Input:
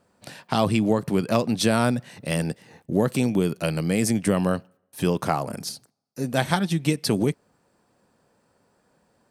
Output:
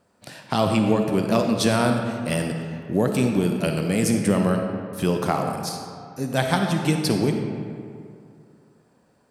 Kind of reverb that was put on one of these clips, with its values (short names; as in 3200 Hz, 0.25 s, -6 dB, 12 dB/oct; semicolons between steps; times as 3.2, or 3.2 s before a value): digital reverb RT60 2.4 s, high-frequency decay 0.55×, pre-delay 10 ms, DRR 3.5 dB